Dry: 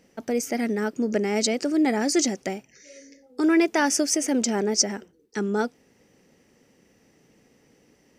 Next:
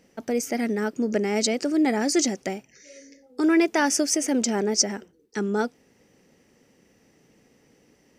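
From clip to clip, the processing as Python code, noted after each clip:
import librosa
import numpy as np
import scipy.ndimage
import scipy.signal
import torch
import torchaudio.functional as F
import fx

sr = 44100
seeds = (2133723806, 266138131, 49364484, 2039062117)

y = x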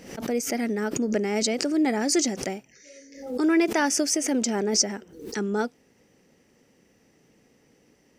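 y = fx.pre_swell(x, sr, db_per_s=86.0)
y = y * 10.0 ** (-1.5 / 20.0)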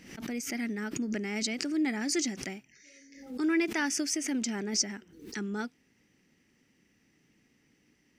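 y = fx.curve_eq(x, sr, hz=(320.0, 500.0, 2100.0, 8100.0), db=(0, -11, 4, -2))
y = y * 10.0 ** (-6.0 / 20.0)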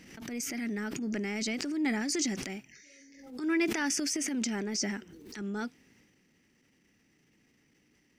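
y = fx.transient(x, sr, attack_db=-10, sustain_db=6)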